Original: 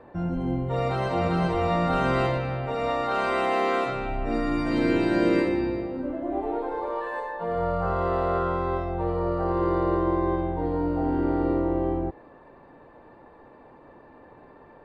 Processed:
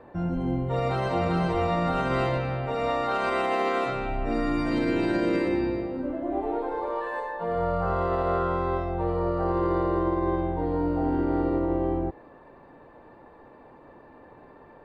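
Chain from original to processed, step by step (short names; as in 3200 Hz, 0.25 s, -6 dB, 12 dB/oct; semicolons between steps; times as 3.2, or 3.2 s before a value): limiter -16.5 dBFS, peak gain reduction 5 dB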